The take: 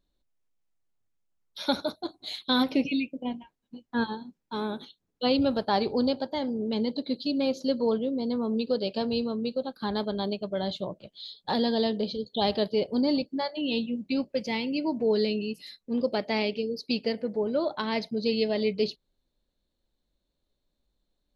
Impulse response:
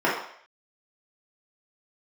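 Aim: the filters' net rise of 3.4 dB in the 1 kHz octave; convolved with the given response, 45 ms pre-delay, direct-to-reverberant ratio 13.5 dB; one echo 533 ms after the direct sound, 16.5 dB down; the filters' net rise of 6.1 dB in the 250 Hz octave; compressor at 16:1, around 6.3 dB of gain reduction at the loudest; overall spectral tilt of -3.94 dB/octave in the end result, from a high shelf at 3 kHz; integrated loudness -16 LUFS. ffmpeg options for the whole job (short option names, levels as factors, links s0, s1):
-filter_complex "[0:a]equalizer=f=250:t=o:g=6.5,equalizer=f=1000:t=o:g=3.5,highshelf=f=3000:g=4.5,acompressor=threshold=0.0891:ratio=16,aecho=1:1:533:0.15,asplit=2[s0][s1];[1:a]atrim=start_sample=2205,adelay=45[s2];[s1][s2]afir=irnorm=-1:irlink=0,volume=0.0266[s3];[s0][s3]amix=inputs=2:normalize=0,volume=3.76"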